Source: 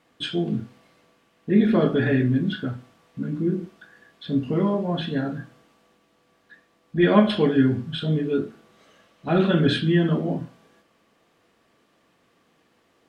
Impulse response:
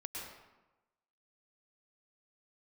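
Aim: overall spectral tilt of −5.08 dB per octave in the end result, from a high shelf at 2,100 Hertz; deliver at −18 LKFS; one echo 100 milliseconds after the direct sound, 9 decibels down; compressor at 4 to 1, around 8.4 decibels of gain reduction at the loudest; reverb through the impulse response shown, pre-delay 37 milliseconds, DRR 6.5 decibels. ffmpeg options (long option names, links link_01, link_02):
-filter_complex "[0:a]highshelf=frequency=2100:gain=7,acompressor=threshold=-21dB:ratio=4,aecho=1:1:100:0.355,asplit=2[link_01][link_02];[1:a]atrim=start_sample=2205,adelay=37[link_03];[link_02][link_03]afir=irnorm=-1:irlink=0,volume=-6dB[link_04];[link_01][link_04]amix=inputs=2:normalize=0,volume=7.5dB"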